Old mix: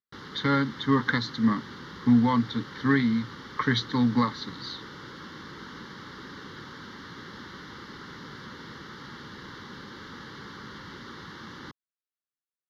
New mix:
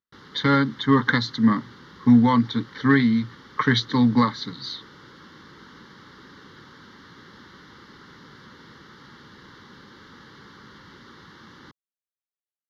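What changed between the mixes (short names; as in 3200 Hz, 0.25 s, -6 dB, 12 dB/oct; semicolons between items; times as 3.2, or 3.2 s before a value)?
speech +5.0 dB; background -4.5 dB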